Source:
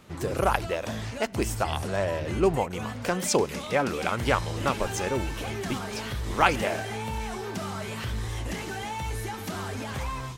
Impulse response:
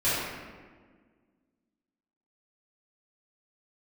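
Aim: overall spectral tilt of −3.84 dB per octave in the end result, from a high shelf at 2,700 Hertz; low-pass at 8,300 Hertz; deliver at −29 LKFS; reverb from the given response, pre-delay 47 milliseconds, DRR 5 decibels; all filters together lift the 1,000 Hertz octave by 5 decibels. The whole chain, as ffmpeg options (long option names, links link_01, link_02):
-filter_complex "[0:a]lowpass=8300,equalizer=frequency=1000:width_type=o:gain=5.5,highshelf=frequency=2700:gain=7,asplit=2[link_01][link_02];[1:a]atrim=start_sample=2205,adelay=47[link_03];[link_02][link_03]afir=irnorm=-1:irlink=0,volume=-18.5dB[link_04];[link_01][link_04]amix=inputs=2:normalize=0,volume=-4.5dB"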